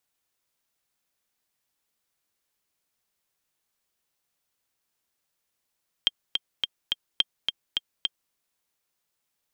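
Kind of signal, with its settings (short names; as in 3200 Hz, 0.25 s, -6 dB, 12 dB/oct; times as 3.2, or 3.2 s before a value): metronome 212 bpm, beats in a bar 4, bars 2, 3190 Hz, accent 4.5 dB -7 dBFS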